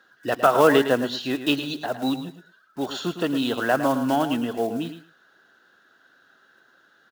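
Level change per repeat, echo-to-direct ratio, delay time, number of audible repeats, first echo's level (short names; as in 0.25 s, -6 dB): -16.0 dB, -10.5 dB, 0.109 s, 2, -10.5 dB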